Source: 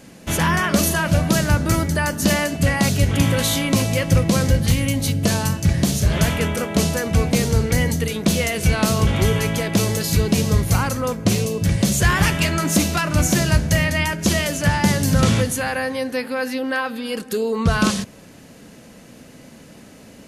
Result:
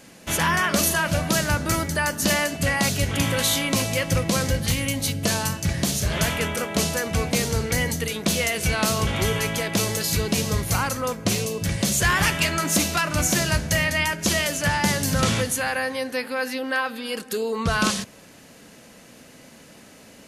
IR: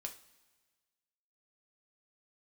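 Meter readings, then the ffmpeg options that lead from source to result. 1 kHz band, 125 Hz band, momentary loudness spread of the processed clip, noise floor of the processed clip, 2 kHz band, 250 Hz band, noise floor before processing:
-1.5 dB, -7.5 dB, 5 LU, -48 dBFS, -0.5 dB, -6.5 dB, -44 dBFS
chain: -af "lowshelf=f=450:g=-8"

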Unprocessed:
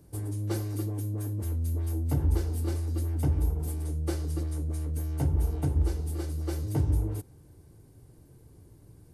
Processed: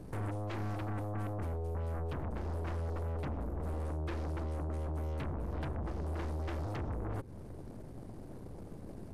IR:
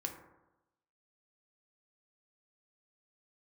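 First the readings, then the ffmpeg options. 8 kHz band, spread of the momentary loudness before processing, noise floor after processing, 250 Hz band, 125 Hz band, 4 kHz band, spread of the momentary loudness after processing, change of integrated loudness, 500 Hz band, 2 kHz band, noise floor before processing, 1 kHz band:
-17.5 dB, 5 LU, -48 dBFS, -6.5 dB, -9.0 dB, -6.5 dB, 11 LU, -9.0 dB, -1.5 dB, +2.0 dB, -56 dBFS, +3.5 dB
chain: -filter_complex "[0:a]acrossover=split=2800[a][b];[b]acompressor=threshold=-52dB:ratio=4:attack=1:release=60[c];[a][c]amix=inputs=2:normalize=0,aemphasis=mode=reproduction:type=75kf,acompressor=threshold=-40dB:ratio=5,asoftclip=type=tanh:threshold=-37.5dB,aeval=exprs='0.0133*(cos(1*acos(clip(val(0)/0.0133,-1,1)))-cos(1*PI/2))+0.00596*(cos(7*acos(clip(val(0)/0.0133,-1,1)))-cos(7*PI/2))+0.00266*(cos(8*acos(clip(val(0)/0.0133,-1,1)))-cos(8*PI/2))':c=same,volume=4dB"

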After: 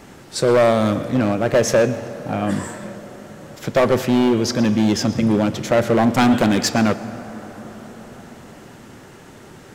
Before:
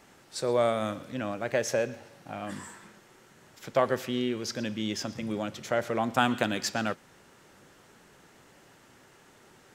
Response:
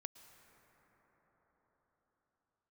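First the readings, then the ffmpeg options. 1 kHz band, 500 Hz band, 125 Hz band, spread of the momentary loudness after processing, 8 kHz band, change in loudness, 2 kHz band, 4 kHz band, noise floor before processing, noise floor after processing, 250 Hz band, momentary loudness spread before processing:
+9.0 dB, +11.5 dB, +16.0 dB, 19 LU, +10.5 dB, +12.0 dB, +8.5 dB, +9.0 dB, -58 dBFS, -43 dBFS, +15.5 dB, 14 LU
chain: -filter_complex "[0:a]lowshelf=f=390:g=11.5,asoftclip=type=hard:threshold=-20.5dB,asplit=2[a][b];[1:a]atrim=start_sample=2205,lowshelf=f=150:g=-7[c];[b][c]afir=irnorm=-1:irlink=0,volume=7.5dB[d];[a][d]amix=inputs=2:normalize=0,volume=3.5dB"

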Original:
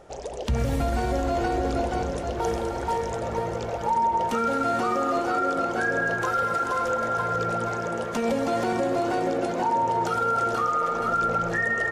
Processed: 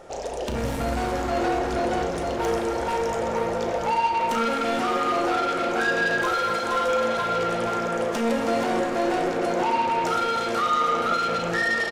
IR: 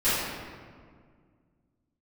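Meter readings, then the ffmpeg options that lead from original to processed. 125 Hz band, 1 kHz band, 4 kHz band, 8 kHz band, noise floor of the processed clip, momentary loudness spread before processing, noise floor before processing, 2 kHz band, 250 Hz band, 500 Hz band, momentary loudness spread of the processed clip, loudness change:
-4.0 dB, +1.0 dB, +8.0 dB, +2.5 dB, -28 dBFS, 5 LU, -32 dBFS, +2.5 dB, +1.5 dB, +2.0 dB, 4 LU, +1.5 dB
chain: -filter_complex "[0:a]asoftclip=type=tanh:threshold=-26dB,lowshelf=f=210:g=-7,asplit=2[a][b];[b]adelay=35,volume=-11dB[c];[a][c]amix=inputs=2:normalize=0,asplit=2[d][e];[1:a]atrim=start_sample=2205,afade=t=out:st=0.34:d=0.01,atrim=end_sample=15435[f];[e][f]afir=irnorm=-1:irlink=0,volume=-17.5dB[g];[d][g]amix=inputs=2:normalize=0,volume=4dB"

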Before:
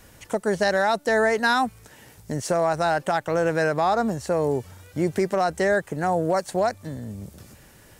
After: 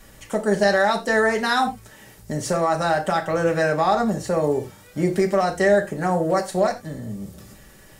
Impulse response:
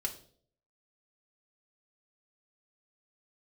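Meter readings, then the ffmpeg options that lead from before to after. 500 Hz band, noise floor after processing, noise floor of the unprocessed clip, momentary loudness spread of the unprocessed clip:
+2.0 dB, -48 dBFS, -52 dBFS, 12 LU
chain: -filter_complex "[1:a]atrim=start_sample=2205,afade=t=out:st=0.14:d=0.01,atrim=end_sample=6615,asetrate=38367,aresample=44100[a];[0:a][a]afir=irnorm=-1:irlink=0"

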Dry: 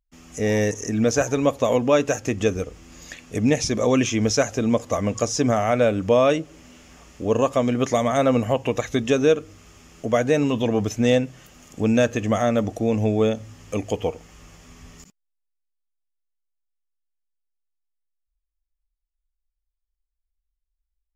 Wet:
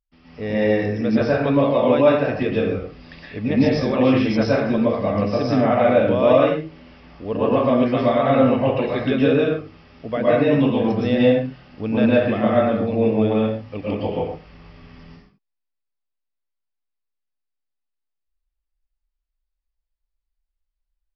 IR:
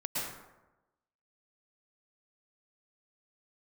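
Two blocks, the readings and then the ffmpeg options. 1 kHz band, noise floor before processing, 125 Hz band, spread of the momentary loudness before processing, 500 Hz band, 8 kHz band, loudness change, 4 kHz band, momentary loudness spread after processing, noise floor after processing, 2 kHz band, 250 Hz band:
+3.0 dB, -81 dBFS, +2.0 dB, 11 LU, +3.0 dB, under -20 dB, +2.5 dB, -1.5 dB, 12 LU, -79 dBFS, +2.0 dB, +4.0 dB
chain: -filter_complex "[1:a]atrim=start_sample=2205,afade=t=out:st=0.33:d=0.01,atrim=end_sample=14994[a];[0:a][a]afir=irnorm=-1:irlink=0,aresample=11025,aresample=44100,volume=-2.5dB"

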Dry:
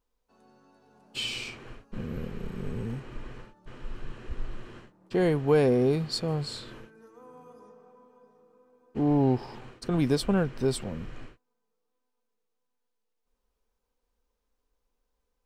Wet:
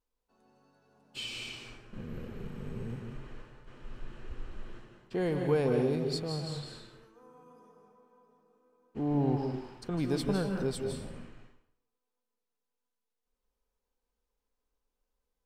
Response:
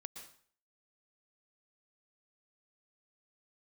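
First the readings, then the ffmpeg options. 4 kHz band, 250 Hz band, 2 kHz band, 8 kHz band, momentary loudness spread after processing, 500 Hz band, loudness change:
-5.5 dB, -5.0 dB, -5.0 dB, -5.5 dB, 21 LU, -5.0 dB, -5.0 dB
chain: -filter_complex "[1:a]atrim=start_sample=2205,asetrate=33075,aresample=44100[a];[0:a][a]afir=irnorm=-1:irlink=0,volume=-2.5dB"

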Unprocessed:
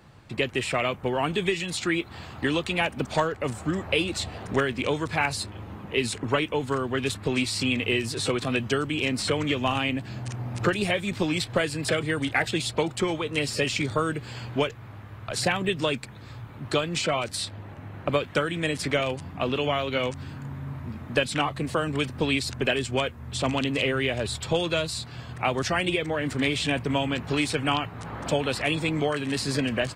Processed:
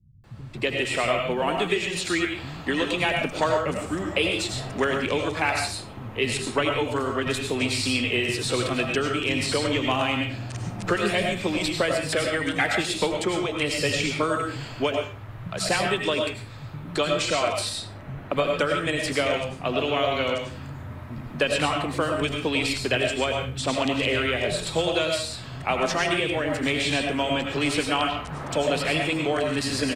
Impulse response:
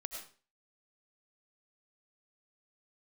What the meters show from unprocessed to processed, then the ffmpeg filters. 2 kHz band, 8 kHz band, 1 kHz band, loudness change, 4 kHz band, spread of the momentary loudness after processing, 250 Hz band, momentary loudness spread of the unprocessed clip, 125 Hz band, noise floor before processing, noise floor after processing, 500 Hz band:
+2.5 dB, +2.5 dB, +2.5 dB, +2.0 dB, +2.5 dB, 7 LU, +0.5 dB, 8 LU, -1.0 dB, -43 dBFS, -39 dBFS, +2.5 dB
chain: -filter_complex "[0:a]acrossover=split=170[a][b];[b]adelay=240[c];[a][c]amix=inputs=2:normalize=0[d];[1:a]atrim=start_sample=2205[e];[d][e]afir=irnorm=-1:irlink=0,volume=4dB"

